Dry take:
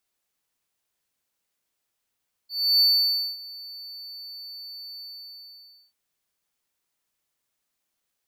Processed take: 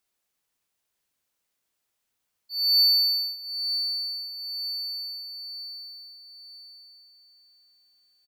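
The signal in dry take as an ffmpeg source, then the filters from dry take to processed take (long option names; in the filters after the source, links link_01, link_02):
-f lavfi -i "aevalsrc='0.224*(1-4*abs(mod(4500*t+0.25,1)-0.5))':duration=3.435:sample_rate=44100,afade=type=in:duration=0.311,afade=type=out:start_time=0.311:duration=0.564:silence=0.0794,afade=type=out:start_time=2.51:duration=0.925"
-af "aecho=1:1:936|1872|2808|3744:0.299|0.119|0.0478|0.0191"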